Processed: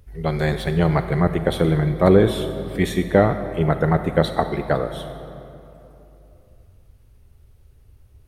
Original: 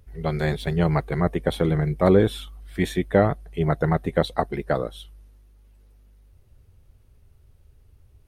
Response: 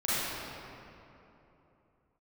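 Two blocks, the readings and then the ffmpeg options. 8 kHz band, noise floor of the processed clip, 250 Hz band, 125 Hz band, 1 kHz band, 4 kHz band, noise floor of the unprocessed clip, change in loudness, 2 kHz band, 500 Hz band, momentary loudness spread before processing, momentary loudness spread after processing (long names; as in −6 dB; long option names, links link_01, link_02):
+4.0 dB, −52 dBFS, +3.5 dB, +3.5 dB, +3.5 dB, +3.5 dB, −56 dBFS, +3.0 dB, +3.5 dB, +3.5 dB, 9 LU, 11 LU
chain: -filter_complex "[0:a]asplit=2[link_01][link_02];[1:a]atrim=start_sample=2205,highshelf=frequency=5900:gain=8.5[link_03];[link_02][link_03]afir=irnorm=-1:irlink=0,volume=-19.5dB[link_04];[link_01][link_04]amix=inputs=2:normalize=0,volume=2dB"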